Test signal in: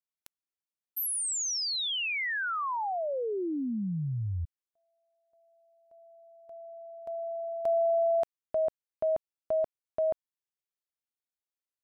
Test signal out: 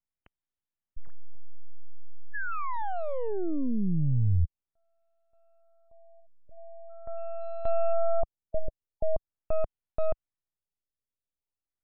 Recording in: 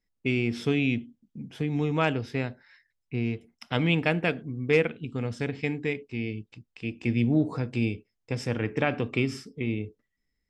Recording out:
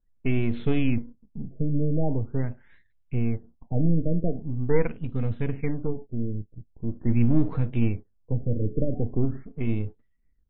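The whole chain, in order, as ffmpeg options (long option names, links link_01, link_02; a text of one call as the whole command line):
ffmpeg -i in.wav -af "aeval=exprs='if(lt(val(0),0),0.447*val(0),val(0))':channel_layout=same,aemphasis=mode=reproduction:type=bsi,afftfilt=real='re*lt(b*sr/1024,610*pow(4300/610,0.5+0.5*sin(2*PI*0.43*pts/sr)))':imag='im*lt(b*sr/1024,610*pow(4300/610,0.5+0.5*sin(2*PI*0.43*pts/sr)))':win_size=1024:overlap=0.75" out.wav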